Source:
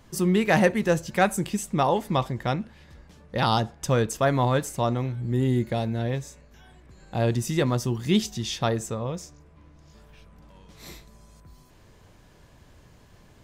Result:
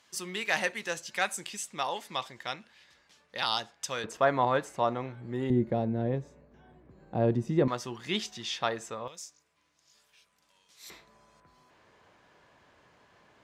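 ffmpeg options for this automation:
-af "asetnsamples=n=441:p=0,asendcmd='4.04 bandpass f 1100;5.5 bandpass f 350;7.68 bandpass f 1800;9.08 bandpass f 7200;10.9 bandpass f 1300',bandpass=f=4.1k:t=q:w=0.58:csg=0"

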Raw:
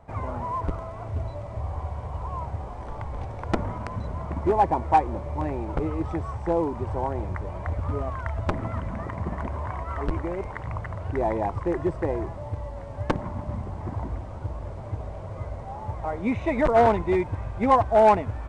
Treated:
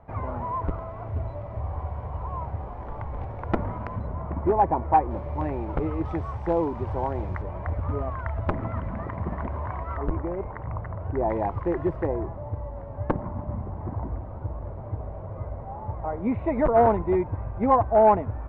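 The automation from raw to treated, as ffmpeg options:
-af "asetnsamples=n=441:p=0,asendcmd='3.99 lowpass f 1600;5.11 lowpass f 2900;6.05 lowpass f 4100;7.42 lowpass f 2200;9.97 lowpass f 1300;11.3 lowpass f 2300;12.07 lowpass f 1300',lowpass=2.2k"

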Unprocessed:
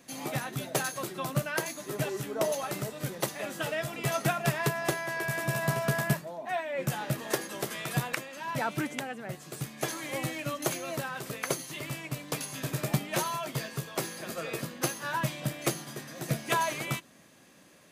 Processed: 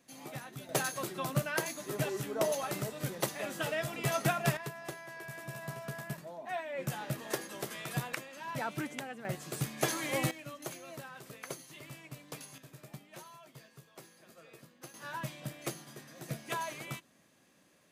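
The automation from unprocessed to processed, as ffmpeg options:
-af "asetnsamples=n=441:p=0,asendcmd='0.69 volume volume -2dB;4.57 volume volume -13dB;6.18 volume volume -5.5dB;9.25 volume volume 1.5dB;10.31 volume volume -11.5dB;12.58 volume volume -20dB;14.94 volume volume -9dB',volume=-10.5dB"

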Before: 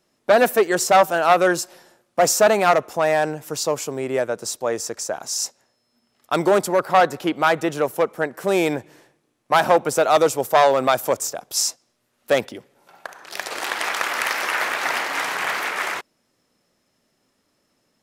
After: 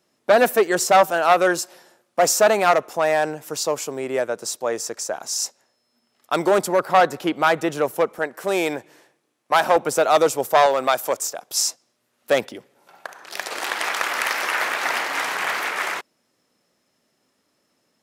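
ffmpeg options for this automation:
-af "asetnsamples=n=441:p=0,asendcmd='1.11 highpass f 230;6.58 highpass f 100;8.19 highpass f 390;9.76 highpass f 160;10.66 highpass f 470;11.51 highpass f 150',highpass=f=110:p=1"

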